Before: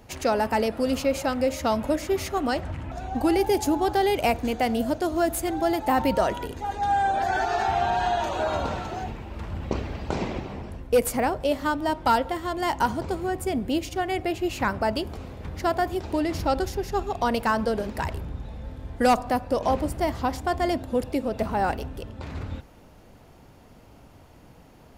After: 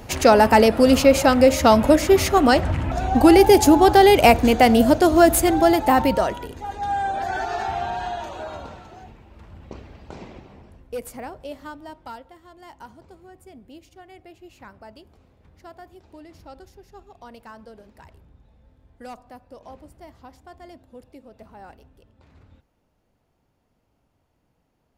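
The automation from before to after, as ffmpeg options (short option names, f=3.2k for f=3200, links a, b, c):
-af "volume=10dB,afade=t=out:st=5.37:d=1.02:silence=0.266073,afade=t=out:st=7.53:d=1.25:silence=0.334965,afade=t=out:st=11.58:d=0.66:silence=0.398107"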